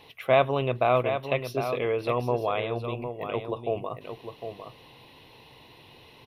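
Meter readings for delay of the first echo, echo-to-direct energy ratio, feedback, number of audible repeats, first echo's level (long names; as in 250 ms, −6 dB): 755 ms, −8.5 dB, repeats not evenly spaced, 1, −8.5 dB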